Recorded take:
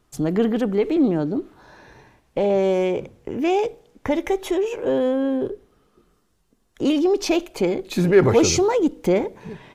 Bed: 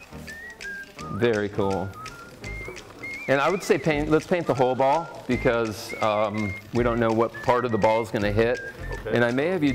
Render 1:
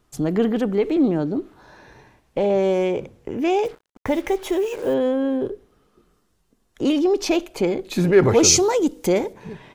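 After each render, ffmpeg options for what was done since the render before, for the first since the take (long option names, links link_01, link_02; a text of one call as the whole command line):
ffmpeg -i in.wav -filter_complex "[0:a]asettb=1/sr,asplit=3[link_01][link_02][link_03];[link_01]atrim=end=3.654[link_04];[link_02]atrim=start=3.65:end=4.94,asetpts=PTS-STARTPTS,afade=type=in:duration=0.004:curve=qsin,afade=type=out:start_time=1.286:duration=0.004:curve=qsin,acrusher=bits=6:mix=0:aa=0.5[link_05];[link_03]atrim=start=4.936[link_06];[link_04][link_05]acrossfade=duration=0.004:curve1=hsin:curve2=qsin[link_07];[link_07][link_06]acrossfade=duration=0.004:curve1=qsin:curve2=hsin,asettb=1/sr,asplit=3[link_08][link_09][link_10];[link_08]atrim=end=8.434[link_11];[link_09]atrim=start=8.43:end=9.33,asetpts=PTS-STARTPTS,afade=type=in:duration=0.004:curve=qsin,afade=type=out:start_time=0.896:duration=0.004:curve=qsin,bass=frequency=250:gain=-2,treble=frequency=4000:gain=10[link_12];[link_10]atrim=start=9.326[link_13];[link_11][link_12]acrossfade=duration=0.004:curve1=hsin:curve2=qsin[link_14];[link_14][link_13]acrossfade=duration=0.004:curve1=qsin:curve2=hsin" out.wav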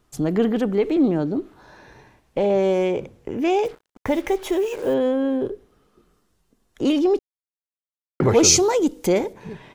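ffmpeg -i in.wav -filter_complex "[0:a]asplit=3[link_01][link_02][link_03];[link_01]atrim=end=7.19,asetpts=PTS-STARTPTS,afade=type=out:start_time=7.186:duration=0.004:curve=hsin[link_04];[link_02]atrim=start=7.19:end=8.2,asetpts=PTS-STARTPTS,volume=0[link_05];[link_03]atrim=start=8.2,asetpts=PTS-STARTPTS,afade=type=in:duration=0.004:curve=hsin[link_06];[link_04][link_05][link_06]concat=n=3:v=0:a=1" out.wav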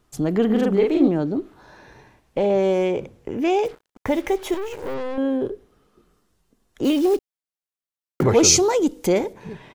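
ffmpeg -i in.wav -filter_complex "[0:a]asplit=3[link_01][link_02][link_03];[link_01]afade=type=out:start_time=0.49:duration=0.02[link_04];[link_02]asplit=2[link_05][link_06];[link_06]adelay=42,volume=-2dB[link_07];[link_05][link_07]amix=inputs=2:normalize=0,afade=type=in:start_time=0.49:duration=0.02,afade=type=out:start_time=1.07:duration=0.02[link_08];[link_03]afade=type=in:start_time=1.07:duration=0.02[link_09];[link_04][link_08][link_09]amix=inputs=3:normalize=0,asettb=1/sr,asplit=3[link_10][link_11][link_12];[link_10]atrim=end=4.544[link_13];[link_11]atrim=start=4.54:end=5.18,asetpts=PTS-STARTPTS,afade=type=in:duration=0.004:curve=qsin,afade=type=out:start_time=0.636:duration=0.004:curve=qsin,aeval=exprs='(tanh(20*val(0)+0.75)-tanh(0.75))/20':channel_layout=same[link_14];[link_12]atrim=start=5.176[link_15];[link_13][link_14]acrossfade=duration=0.004:curve1=hsin:curve2=qsin[link_16];[link_16][link_15]acrossfade=duration=0.004:curve1=qsin:curve2=hsin,asplit=3[link_17][link_18][link_19];[link_17]afade=type=out:start_time=6.83:duration=0.02[link_20];[link_18]acrusher=bits=6:mode=log:mix=0:aa=0.000001,afade=type=in:start_time=6.83:duration=0.02,afade=type=out:start_time=8.22:duration=0.02[link_21];[link_19]afade=type=in:start_time=8.22:duration=0.02[link_22];[link_20][link_21][link_22]amix=inputs=3:normalize=0" out.wav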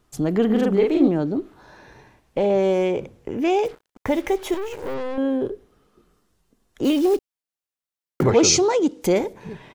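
ffmpeg -i in.wav -filter_complex "[0:a]asettb=1/sr,asplit=3[link_01][link_02][link_03];[link_01]atrim=end=8.304[link_04];[link_02]atrim=start=8.3:end=9.02,asetpts=PTS-STARTPTS,afade=type=in:duration=0.004:curve=qsin,afade=type=out:start_time=0.716:duration=0.004:curve=qsin,highpass=100,lowpass=6100[link_05];[link_03]atrim=start=9.016[link_06];[link_04][link_05]acrossfade=duration=0.004:curve1=hsin:curve2=qsin[link_07];[link_07][link_06]acrossfade=duration=0.004:curve1=qsin:curve2=hsin" out.wav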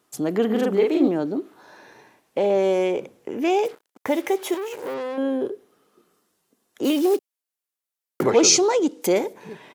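ffmpeg -i in.wav -af "highpass=250,equalizer=frequency=13000:width_type=o:width=1.1:gain=6" out.wav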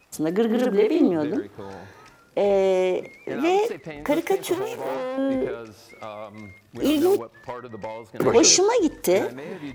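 ffmpeg -i in.wav -i bed.wav -filter_complex "[1:a]volume=-13.5dB[link_01];[0:a][link_01]amix=inputs=2:normalize=0" out.wav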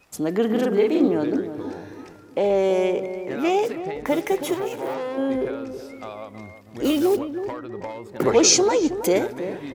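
ffmpeg -i in.wav -filter_complex "[0:a]asplit=2[link_01][link_02];[link_02]adelay=322,lowpass=frequency=890:poles=1,volume=-9dB,asplit=2[link_03][link_04];[link_04]adelay=322,lowpass=frequency=890:poles=1,volume=0.41,asplit=2[link_05][link_06];[link_06]adelay=322,lowpass=frequency=890:poles=1,volume=0.41,asplit=2[link_07][link_08];[link_08]adelay=322,lowpass=frequency=890:poles=1,volume=0.41,asplit=2[link_09][link_10];[link_10]adelay=322,lowpass=frequency=890:poles=1,volume=0.41[link_11];[link_01][link_03][link_05][link_07][link_09][link_11]amix=inputs=6:normalize=0" out.wav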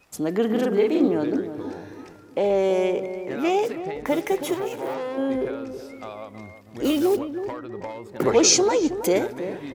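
ffmpeg -i in.wav -af "volume=-1dB" out.wav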